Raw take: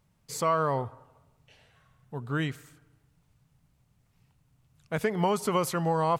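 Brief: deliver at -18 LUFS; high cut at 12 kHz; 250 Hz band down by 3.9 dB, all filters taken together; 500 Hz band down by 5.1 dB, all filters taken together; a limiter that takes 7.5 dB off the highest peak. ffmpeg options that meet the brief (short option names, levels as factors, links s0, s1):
-af "lowpass=12000,equalizer=f=250:t=o:g=-5.5,equalizer=f=500:t=o:g=-5,volume=6.68,alimiter=limit=0.422:level=0:latency=1"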